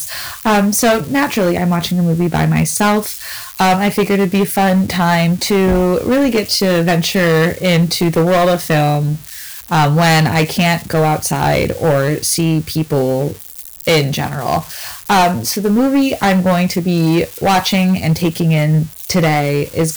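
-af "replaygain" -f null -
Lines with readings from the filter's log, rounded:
track_gain = -4.2 dB
track_peak = 0.354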